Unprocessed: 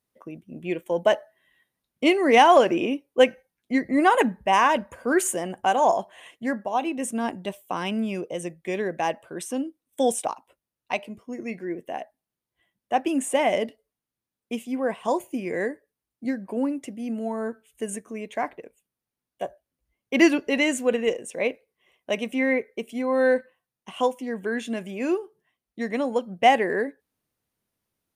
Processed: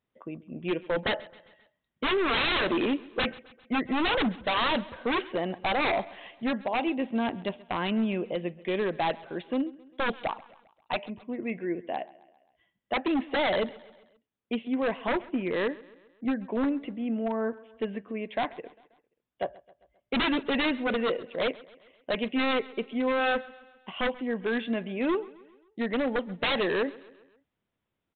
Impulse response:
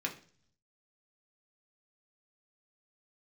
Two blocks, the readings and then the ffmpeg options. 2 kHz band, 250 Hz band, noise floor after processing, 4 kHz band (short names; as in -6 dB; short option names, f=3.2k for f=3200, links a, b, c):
-2.5 dB, -3.5 dB, -84 dBFS, +1.0 dB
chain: -af "aresample=8000,aeval=exprs='0.0891*(abs(mod(val(0)/0.0891+3,4)-2)-1)':c=same,aresample=44100,aecho=1:1:133|266|399|532:0.0891|0.0472|0.025|0.0133"